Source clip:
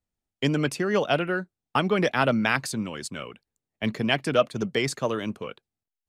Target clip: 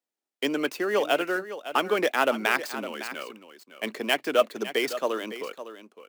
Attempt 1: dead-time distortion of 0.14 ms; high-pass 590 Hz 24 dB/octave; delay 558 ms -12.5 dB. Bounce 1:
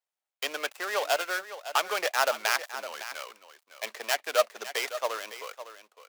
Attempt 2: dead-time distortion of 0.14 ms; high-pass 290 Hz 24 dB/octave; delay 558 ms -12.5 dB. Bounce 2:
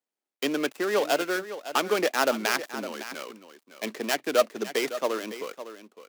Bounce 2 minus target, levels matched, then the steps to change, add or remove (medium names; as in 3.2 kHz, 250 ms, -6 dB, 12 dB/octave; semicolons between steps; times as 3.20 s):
dead-time distortion: distortion +10 dB
change: dead-time distortion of 0.04 ms